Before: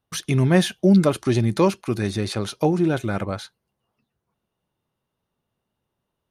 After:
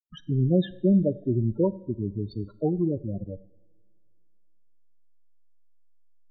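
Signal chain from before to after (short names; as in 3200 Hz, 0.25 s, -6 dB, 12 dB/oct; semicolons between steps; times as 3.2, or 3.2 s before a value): backlash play -21.5 dBFS; loudest bins only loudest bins 8; two-slope reverb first 0.88 s, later 3.1 s, from -24 dB, DRR 17 dB; gain -4 dB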